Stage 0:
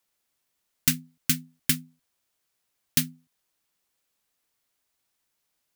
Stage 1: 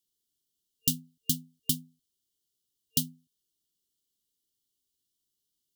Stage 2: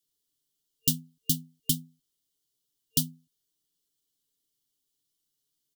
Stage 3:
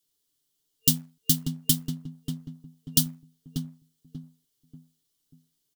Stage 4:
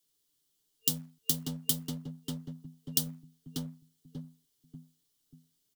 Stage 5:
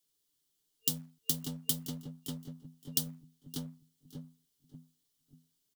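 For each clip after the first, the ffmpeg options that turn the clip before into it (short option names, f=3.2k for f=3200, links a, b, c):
-af "afftfilt=real='re*(1-between(b*sr/4096,450,2800))':imag='im*(1-between(b*sr/4096,450,2800))':win_size=4096:overlap=0.75,volume=-4dB"
-af "aecho=1:1:6.9:0.65"
-filter_complex "[0:a]asplit=2[a][b];[b]acrusher=bits=2:mode=log:mix=0:aa=0.000001,volume=-4.5dB[c];[a][c]amix=inputs=2:normalize=0,asplit=2[d][e];[e]adelay=588,lowpass=f=990:p=1,volume=-4dB,asplit=2[f][g];[g]adelay=588,lowpass=f=990:p=1,volume=0.38,asplit=2[h][i];[i]adelay=588,lowpass=f=990:p=1,volume=0.38,asplit=2[j][k];[k]adelay=588,lowpass=f=990:p=1,volume=0.38,asplit=2[l][m];[m]adelay=588,lowpass=f=990:p=1,volume=0.38[n];[d][f][h][j][l][n]amix=inputs=6:normalize=0"
-filter_complex "[0:a]acrossover=split=130[a][b];[b]acompressor=threshold=-25dB:ratio=5[c];[a][c]amix=inputs=2:normalize=0,acrossover=split=240|1100|5800[d][e][f][g];[d]asoftclip=type=hard:threshold=-40dB[h];[h][e][f][g]amix=inputs=4:normalize=0"
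-af "aecho=1:1:567|1134:0.133|0.0213,volume=-2.5dB"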